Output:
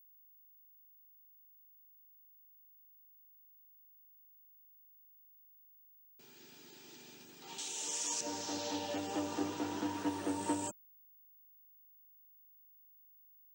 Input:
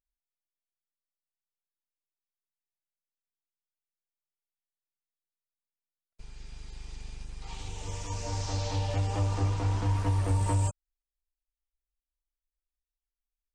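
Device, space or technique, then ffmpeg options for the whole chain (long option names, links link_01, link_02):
old television with a line whistle: -filter_complex "[0:a]asettb=1/sr,asplit=3[link_01][link_02][link_03];[link_01]atrim=end=7.584[link_04];[link_02]atrim=start=7.58:end=8.21,asetpts=PTS-STARTPTS,afade=type=in:duration=0.004:curve=qsin,afade=type=out:start_time=0.626:duration=0.004:curve=qsin,aemphasis=mode=production:type=riaa[link_05];[link_03]atrim=start=8.206[link_06];[link_04][link_05]acrossfade=duration=0.004:curve1=hsin:curve2=qsin[link_07];[link_07][link_06]acrossfade=duration=0.004:curve1=qsin:curve2=hsin,highpass=frequency=220:width=0.5412,highpass=frequency=220:width=1.3066,equalizer=frequency=340:width_type=q:width=4:gain=6,equalizer=frequency=500:width_type=q:width=4:gain=-5,equalizer=frequency=730:width_type=q:width=4:gain=-4,equalizer=frequency=1100:width_type=q:width=4:gain=-8,equalizer=frequency=2200:width_type=q:width=4:gain=-7,equalizer=frequency=4700:width_type=q:width=4:gain=-4,lowpass=frequency=8200:width=0.5412,lowpass=frequency=8200:width=1.3066,aeval=exprs='val(0)+0.001*sin(2*PI*15625*n/s)':channel_layout=same"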